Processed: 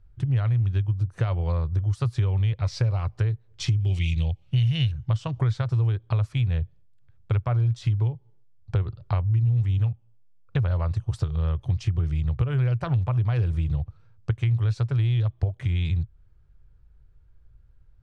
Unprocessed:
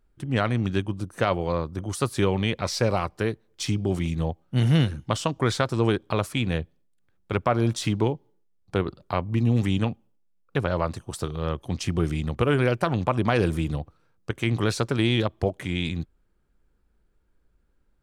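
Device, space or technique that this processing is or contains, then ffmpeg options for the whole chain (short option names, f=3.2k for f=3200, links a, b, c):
jukebox: -filter_complex "[0:a]lowpass=5.6k,lowshelf=f=160:t=q:w=3:g=12,acompressor=threshold=-22dB:ratio=5,asettb=1/sr,asplit=3[a][b][c];[a]atrim=end=3.804[d];[b]atrim=start=3.8:end=4.92,asetpts=PTS-STARTPTS,afade=t=in:d=0.004:c=qsin,afade=t=out:st=1.116:d=0.004:c=qsin,highshelf=f=1.9k:t=q:w=3:g=10[e];[c]atrim=start=4.916[f];[d][e]acrossfade=d=0.004:c1=hsin:c2=qsin[g];[g][f]acrossfade=d=0.004:c1=qsin:c2=hsin"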